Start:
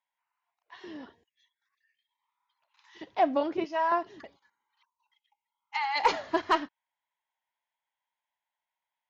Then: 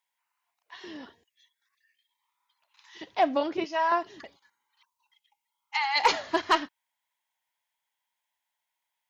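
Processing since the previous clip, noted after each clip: high shelf 2200 Hz +9 dB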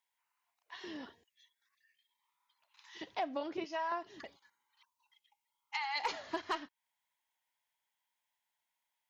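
compressor 2.5:1, threshold -35 dBFS, peak gain reduction 12.5 dB; gain -3 dB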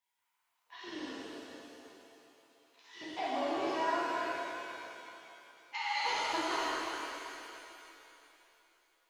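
shimmer reverb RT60 3 s, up +7 st, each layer -8 dB, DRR -9 dB; gain -5 dB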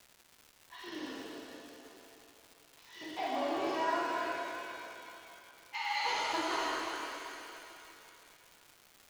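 crackle 490/s -46 dBFS

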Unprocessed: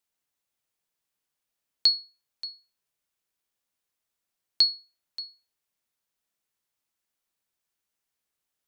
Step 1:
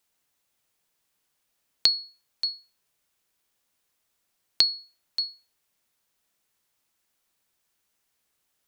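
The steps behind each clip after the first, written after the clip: compressor, threshold -27 dBFS, peak gain reduction 10.5 dB; gain +8.5 dB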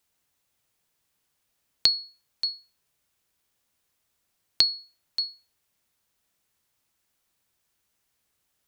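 bell 78 Hz +6.5 dB 2.1 oct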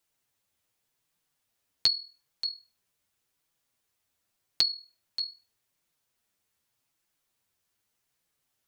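flange 0.85 Hz, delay 5.7 ms, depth 5.4 ms, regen +16%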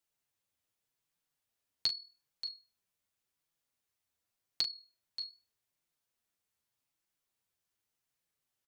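doubler 39 ms -11 dB; gain -8 dB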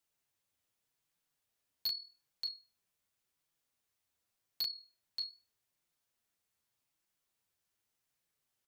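overloaded stage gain 32.5 dB; gain +1.5 dB

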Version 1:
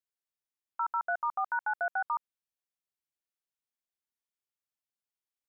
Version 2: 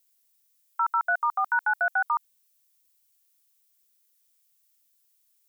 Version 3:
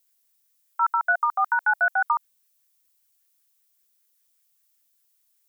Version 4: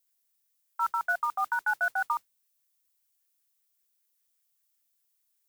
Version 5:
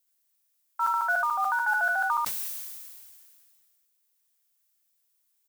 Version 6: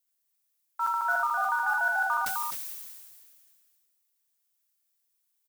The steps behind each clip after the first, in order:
tilt +5.5 dB/oct; gain +5.5 dB
LFO bell 5.1 Hz 620–1800 Hz +6 dB
modulation noise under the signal 24 dB; gain -6.5 dB
echo 77 ms -4.5 dB; sustainer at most 27 dB/s; gain +1 dB
in parallel at -11 dB: sample gate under -37.5 dBFS; on the sum: echo 0.257 s -5 dB; gain -4.5 dB

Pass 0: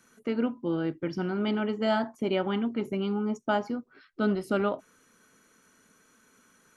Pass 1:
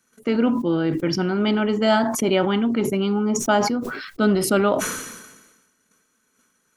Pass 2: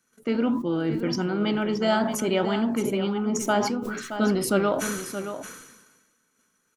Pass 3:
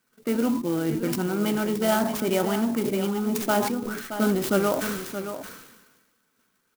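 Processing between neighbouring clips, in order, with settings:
gate -59 dBFS, range -15 dB; high shelf 4100 Hz +6 dB; sustainer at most 47 dB/s; gain +7.5 dB
flange 1.6 Hz, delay 5.6 ms, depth 7.7 ms, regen +83%; echo 0.623 s -10 dB
clock jitter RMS 0.048 ms

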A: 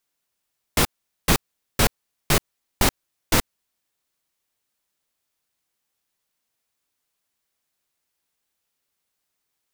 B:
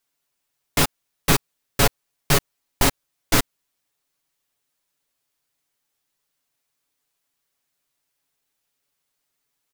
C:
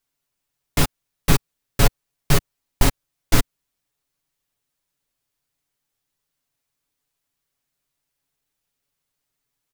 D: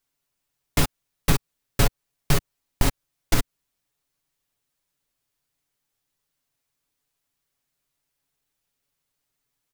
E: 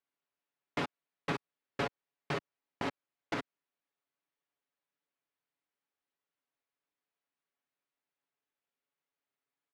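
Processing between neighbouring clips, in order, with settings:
comb 7.1 ms, depth 61%
low shelf 170 Hz +10.5 dB; gain -3 dB
compressor, threshold -14 dBFS, peak gain reduction 6.5 dB
BPF 260–2600 Hz; gain -7 dB

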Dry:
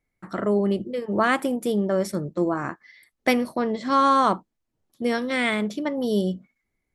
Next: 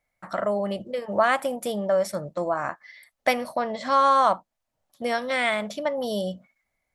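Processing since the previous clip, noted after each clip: resonant low shelf 480 Hz -7 dB, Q 3; in parallel at 0 dB: compressor, threshold -30 dBFS, peak gain reduction 15.5 dB; on the sum: gain -3 dB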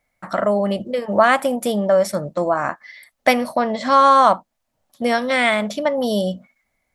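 bell 240 Hz +4.5 dB 0.5 oct; gain +6.5 dB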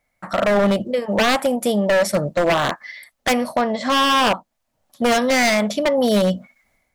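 AGC gain up to 12.5 dB; wavefolder -11 dBFS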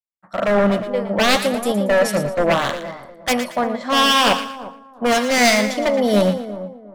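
split-band echo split 1200 Hz, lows 0.356 s, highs 0.116 s, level -7.5 dB; three-band expander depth 100%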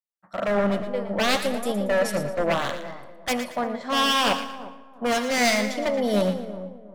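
digital reverb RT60 1.6 s, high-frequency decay 0.65×, pre-delay 30 ms, DRR 16.5 dB; gain -6.5 dB

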